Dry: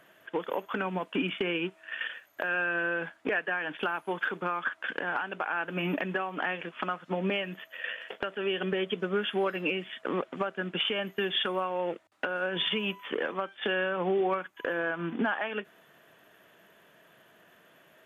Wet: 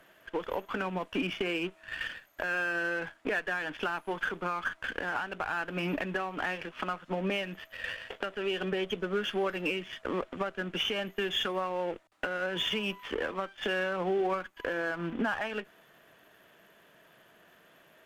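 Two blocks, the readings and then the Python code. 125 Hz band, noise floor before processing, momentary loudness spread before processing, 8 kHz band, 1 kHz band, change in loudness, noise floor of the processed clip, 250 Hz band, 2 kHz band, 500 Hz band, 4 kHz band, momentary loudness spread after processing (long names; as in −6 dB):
−1.5 dB, −61 dBFS, 7 LU, can't be measured, −1.5 dB, −1.5 dB, −61 dBFS, −1.5 dB, −1.5 dB, −2.0 dB, −1.5 dB, 7 LU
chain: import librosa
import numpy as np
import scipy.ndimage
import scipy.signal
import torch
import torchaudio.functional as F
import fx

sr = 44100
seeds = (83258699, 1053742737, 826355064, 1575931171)

y = np.where(x < 0.0, 10.0 ** (-7.0 / 20.0) * x, x)
y = fx.cheby_harmonics(y, sr, harmonics=(4,), levels_db=(-21,), full_scale_db=-15.5)
y = F.gain(torch.from_numpy(y), 2.0).numpy()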